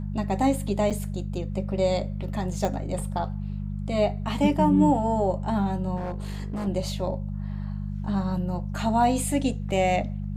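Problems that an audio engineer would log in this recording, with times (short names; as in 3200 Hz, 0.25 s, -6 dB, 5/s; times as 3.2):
hum 50 Hz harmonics 4 -31 dBFS
0.9–0.91 gap 6.6 ms
2.65 pop -14 dBFS
5.96–6.68 clipped -27 dBFS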